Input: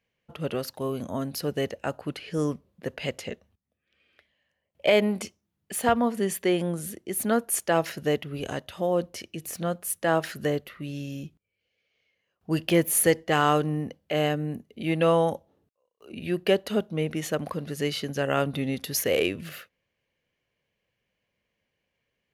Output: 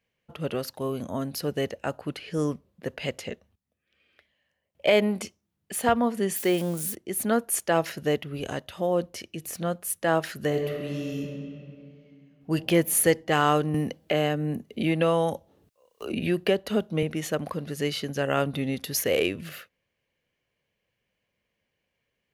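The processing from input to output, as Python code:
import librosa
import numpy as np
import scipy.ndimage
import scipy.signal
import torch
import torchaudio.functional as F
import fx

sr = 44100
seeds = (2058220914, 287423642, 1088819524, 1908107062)

y = fx.crossing_spikes(x, sr, level_db=-29.0, at=(6.36, 6.95))
y = fx.reverb_throw(y, sr, start_s=10.47, length_s=2.03, rt60_s=2.7, drr_db=1.0)
y = fx.band_squash(y, sr, depth_pct=70, at=(13.74, 17.03))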